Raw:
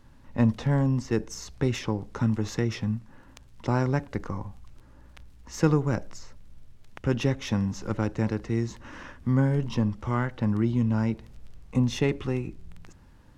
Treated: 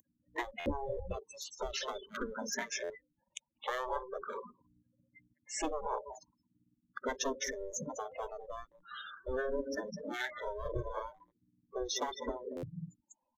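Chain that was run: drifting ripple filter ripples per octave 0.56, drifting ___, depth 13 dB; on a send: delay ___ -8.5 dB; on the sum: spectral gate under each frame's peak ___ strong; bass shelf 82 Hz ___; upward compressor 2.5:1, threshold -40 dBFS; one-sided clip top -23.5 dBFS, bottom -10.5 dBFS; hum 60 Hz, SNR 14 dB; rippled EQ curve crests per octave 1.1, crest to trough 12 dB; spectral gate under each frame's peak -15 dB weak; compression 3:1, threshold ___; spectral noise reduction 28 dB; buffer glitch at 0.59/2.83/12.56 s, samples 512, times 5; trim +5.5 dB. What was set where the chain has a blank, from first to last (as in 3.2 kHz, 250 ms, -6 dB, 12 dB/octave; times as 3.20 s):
+0.41 Hz, 200 ms, -20 dB, +6.5 dB, -38 dBFS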